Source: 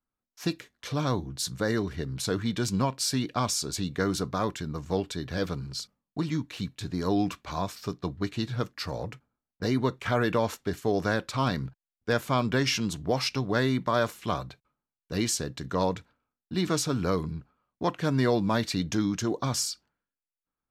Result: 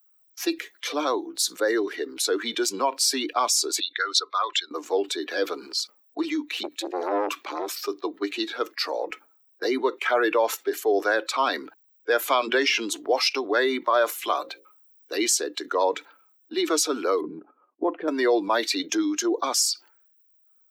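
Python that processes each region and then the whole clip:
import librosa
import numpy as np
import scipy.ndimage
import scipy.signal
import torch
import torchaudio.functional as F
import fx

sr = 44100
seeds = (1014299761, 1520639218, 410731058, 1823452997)

y = fx.chain(x, sr, fx.envelope_sharpen(power=1.5),
    fx.highpass(hz=980.0, slope=12),
    fx.peak_eq(hz=3700.0, db=11.5, octaves=1.5), at=(3.8, 4.71))
y = fx.chain(y, sr, fx.low_shelf(hz=170.0, db=9.5),
    fx.transformer_sat(knee_hz=1100.0), at=(6.63, 7.79))
y = fx.chain(y, sr, fx.high_shelf(hz=4200.0, db=-8.0),
    fx.hum_notches(base_hz=60, count=7),
    fx.band_squash(depth_pct=100), at=(12.28, 12.79))
y = fx.chain(y, sr, fx.high_shelf(hz=4900.0, db=3.5),
    fx.hum_notches(base_hz=60, count=9), at=(14.18, 15.15))
y = fx.chain(y, sr, fx.lowpass(hz=4100.0, slope=12),
    fx.tilt_eq(slope=-4.5),
    fx.level_steps(step_db=12), at=(17.21, 18.08))
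y = fx.bin_expand(y, sr, power=1.5)
y = scipy.signal.sosfilt(scipy.signal.butter(8, 320.0, 'highpass', fs=sr, output='sos'), y)
y = fx.env_flatten(y, sr, amount_pct=50)
y = y * 10.0 ** (6.0 / 20.0)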